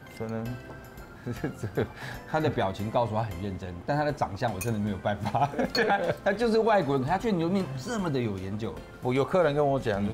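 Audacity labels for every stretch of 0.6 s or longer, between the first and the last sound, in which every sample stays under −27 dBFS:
0.510000	1.270000	silence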